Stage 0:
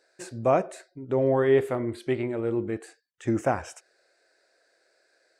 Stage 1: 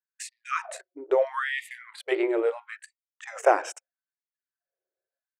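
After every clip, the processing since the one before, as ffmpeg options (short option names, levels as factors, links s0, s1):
-af "anlmdn=0.0631,afftfilt=real='re*gte(b*sr/1024,290*pow(1800/290,0.5+0.5*sin(2*PI*0.76*pts/sr)))':imag='im*gte(b*sr/1024,290*pow(1800/290,0.5+0.5*sin(2*PI*0.76*pts/sr)))':win_size=1024:overlap=0.75,volume=2"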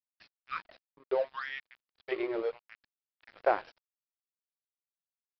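-af "aeval=exprs='sgn(val(0))*max(abs(val(0))-0.0141,0)':c=same,aresample=11025,aresample=44100,volume=0.473"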